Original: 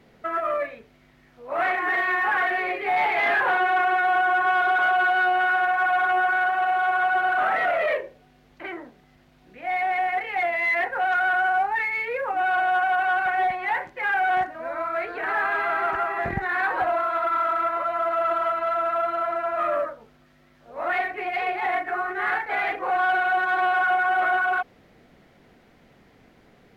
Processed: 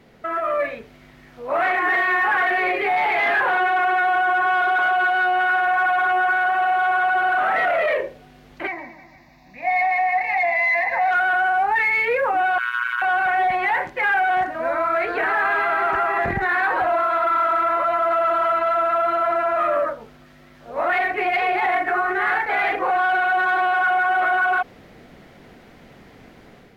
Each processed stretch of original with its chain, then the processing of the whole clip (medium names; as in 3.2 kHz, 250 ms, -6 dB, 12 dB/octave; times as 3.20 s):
8.67–11.11 s: bass shelf 130 Hz -6 dB + static phaser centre 2.1 kHz, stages 8 + two-band feedback delay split 2.1 kHz, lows 155 ms, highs 110 ms, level -11 dB
12.58–13.02 s: steep high-pass 1.1 kHz 96 dB/octave + AM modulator 120 Hz, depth 90%
whole clip: peak limiter -22.5 dBFS; level rider gain up to 5.5 dB; trim +3.5 dB